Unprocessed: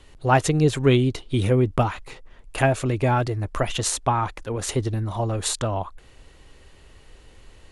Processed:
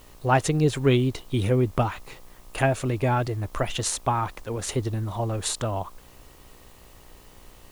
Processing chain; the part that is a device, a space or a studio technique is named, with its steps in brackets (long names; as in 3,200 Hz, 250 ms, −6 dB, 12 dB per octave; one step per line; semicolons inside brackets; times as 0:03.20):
video cassette with head-switching buzz (hum with harmonics 60 Hz, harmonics 21, −54 dBFS −2 dB per octave; white noise bed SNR 31 dB)
level −2.5 dB